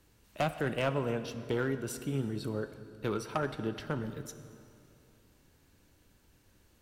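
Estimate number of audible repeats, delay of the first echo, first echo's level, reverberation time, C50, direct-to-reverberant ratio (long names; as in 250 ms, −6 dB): no echo audible, no echo audible, no echo audible, 2.6 s, 11.0 dB, 10.0 dB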